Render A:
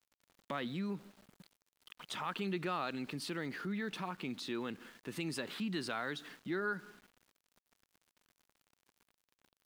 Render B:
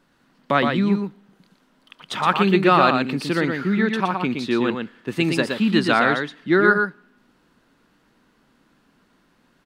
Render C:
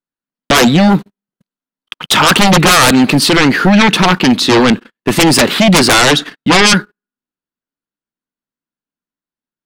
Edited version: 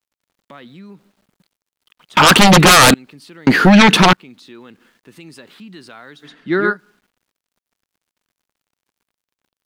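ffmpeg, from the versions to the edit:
-filter_complex "[2:a]asplit=2[a][b];[0:a]asplit=4[c][d][e][f];[c]atrim=end=2.172[g];[a]atrim=start=2.168:end=2.942[h];[d]atrim=start=2.938:end=3.472[i];[b]atrim=start=3.468:end=4.132[j];[e]atrim=start=4.128:end=6.32[k];[1:a]atrim=start=6.22:end=6.77[l];[f]atrim=start=6.67[m];[g][h]acrossfade=d=0.004:c1=hsin:c2=hsin[n];[n][i]acrossfade=d=0.004:c1=hsin:c2=hsin[o];[o][j]acrossfade=d=0.004:c1=hsin:c2=hsin[p];[p][k]acrossfade=d=0.004:c1=hsin:c2=hsin[q];[q][l]acrossfade=d=0.1:c1=tri:c2=tri[r];[r][m]acrossfade=d=0.1:c1=tri:c2=tri"

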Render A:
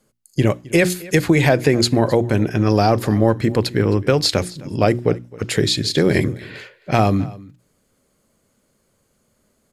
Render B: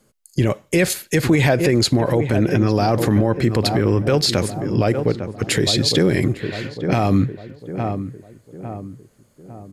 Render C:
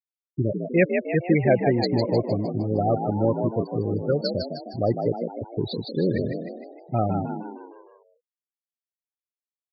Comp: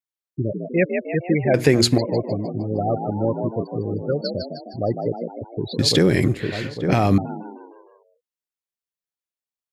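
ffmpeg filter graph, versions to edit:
-filter_complex "[2:a]asplit=3[a][b][c];[a]atrim=end=1.542[d];[0:a]atrim=start=1.538:end=1.982[e];[b]atrim=start=1.978:end=5.792[f];[1:a]atrim=start=5.788:end=7.182[g];[c]atrim=start=7.178[h];[d][e]acrossfade=d=0.004:c1=hsin:c2=hsin[i];[i][f]acrossfade=d=0.004:c1=hsin:c2=hsin[j];[j][g]acrossfade=d=0.004:c1=hsin:c2=hsin[k];[k][h]acrossfade=d=0.004:c1=hsin:c2=hsin"

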